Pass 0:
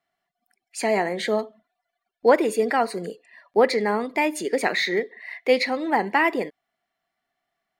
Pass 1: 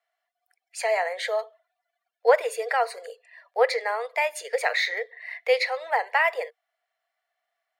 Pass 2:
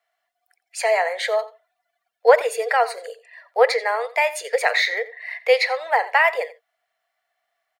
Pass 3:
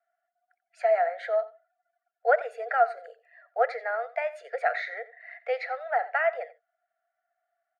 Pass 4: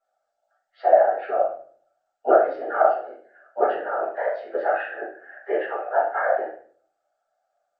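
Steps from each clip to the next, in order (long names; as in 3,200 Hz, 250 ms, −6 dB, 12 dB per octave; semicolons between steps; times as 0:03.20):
Chebyshev high-pass with heavy ripple 460 Hz, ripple 3 dB
slap from a distant wall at 15 metres, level −17 dB; level +5 dB
pair of resonant band-passes 990 Hz, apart 1 octave
hearing-aid frequency compression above 1,200 Hz 1.5 to 1; random phases in short frames; rectangular room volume 47 cubic metres, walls mixed, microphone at 1.7 metres; level −5 dB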